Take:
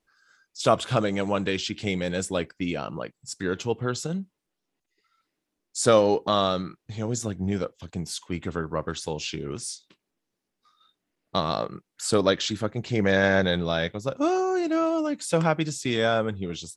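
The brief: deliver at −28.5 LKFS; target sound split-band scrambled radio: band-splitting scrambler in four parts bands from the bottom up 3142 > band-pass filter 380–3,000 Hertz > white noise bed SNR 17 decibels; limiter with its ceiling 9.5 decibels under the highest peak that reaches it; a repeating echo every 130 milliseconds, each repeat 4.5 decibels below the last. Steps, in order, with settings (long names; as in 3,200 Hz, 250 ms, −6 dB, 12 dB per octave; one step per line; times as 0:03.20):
brickwall limiter −15 dBFS
repeating echo 130 ms, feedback 60%, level −4.5 dB
band-splitting scrambler in four parts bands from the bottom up 3142
band-pass filter 380–3,000 Hz
white noise bed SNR 17 dB
level −3 dB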